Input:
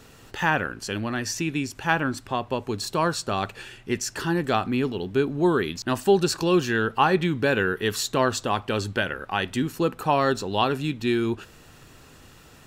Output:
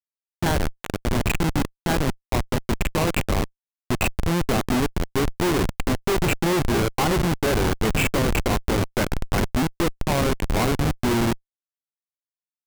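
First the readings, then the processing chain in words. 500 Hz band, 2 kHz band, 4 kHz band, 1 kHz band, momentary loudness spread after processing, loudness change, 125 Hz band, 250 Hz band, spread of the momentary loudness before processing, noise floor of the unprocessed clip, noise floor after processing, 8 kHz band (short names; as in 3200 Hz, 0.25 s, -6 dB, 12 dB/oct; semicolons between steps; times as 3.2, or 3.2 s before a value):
-0.5 dB, -1.0 dB, +0.5 dB, -1.5 dB, 5 LU, +1.0 dB, +5.5 dB, +2.0 dB, 7 LU, -50 dBFS, under -85 dBFS, +2.0 dB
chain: nonlinear frequency compression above 1900 Hz 4:1; in parallel at 0 dB: limiter -15 dBFS, peak gain reduction 8 dB; on the sum: echo 0.662 s -10.5 dB; Schmitt trigger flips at -15.5 dBFS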